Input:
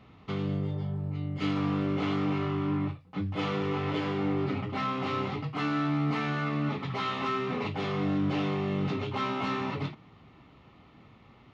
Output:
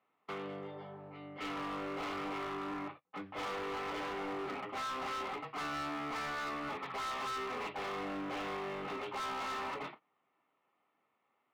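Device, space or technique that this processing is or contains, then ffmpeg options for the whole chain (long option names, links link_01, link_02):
walkie-talkie: -af "highpass=550,lowpass=2300,asoftclip=type=hard:threshold=-37.5dB,agate=range=-18dB:threshold=-52dB:ratio=16:detection=peak,volume=1dB"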